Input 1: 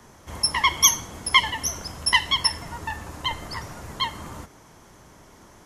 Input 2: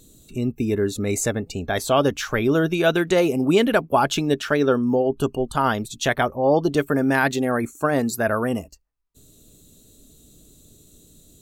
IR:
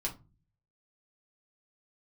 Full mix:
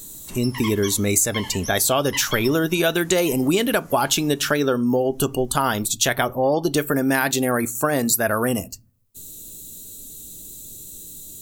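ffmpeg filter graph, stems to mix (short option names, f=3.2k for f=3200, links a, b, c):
-filter_complex "[0:a]acrossover=split=4500[a][b];[b]acompressor=threshold=-39dB:ratio=4:attack=1:release=60[c];[a][c]amix=inputs=2:normalize=0,aemphasis=mode=production:type=75kf,aeval=exprs='sgn(val(0))*max(abs(val(0))-0.00282,0)':c=same,volume=-9.5dB,asplit=2[d][e];[e]volume=-8.5dB[f];[1:a]aemphasis=mode=production:type=75kf,volume=2dB,asplit=3[g][h][i];[h]volume=-15.5dB[j];[i]apad=whole_len=249549[k];[d][k]sidechaincompress=threshold=-28dB:ratio=8:attack=16:release=192[l];[2:a]atrim=start_sample=2205[m];[f][j]amix=inputs=2:normalize=0[n];[n][m]afir=irnorm=-1:irlink=0[o];[l][g][o]amix=inputs=3:normalize=0,acompressor=threshold=-16dB:ratio=5"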